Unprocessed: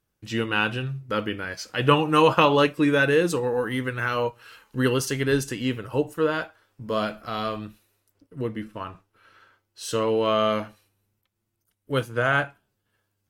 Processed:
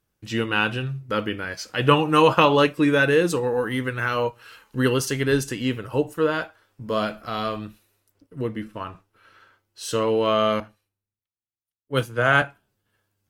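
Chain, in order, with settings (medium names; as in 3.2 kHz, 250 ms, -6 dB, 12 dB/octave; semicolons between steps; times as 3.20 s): 10.60–12.42 s: three bands expanded up and down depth 70%; trim +1.5 dB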